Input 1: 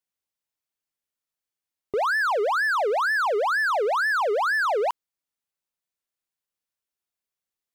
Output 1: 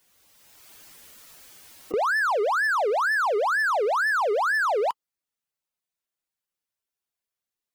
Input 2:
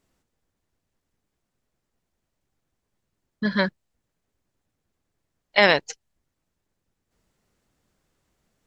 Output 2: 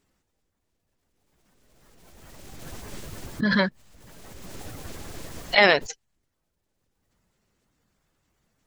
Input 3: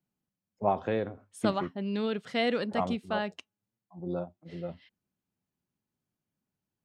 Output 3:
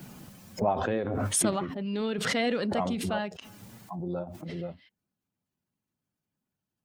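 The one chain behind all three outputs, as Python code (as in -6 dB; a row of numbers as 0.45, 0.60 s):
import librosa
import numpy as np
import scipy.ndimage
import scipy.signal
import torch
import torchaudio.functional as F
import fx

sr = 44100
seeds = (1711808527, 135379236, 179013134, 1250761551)

y = fx.spec_quant(x, sr, step_db=15)
y = fx.pre_swell(y, sr, db_per_s=22.0)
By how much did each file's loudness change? 0.0, +0.5, +2.5 LU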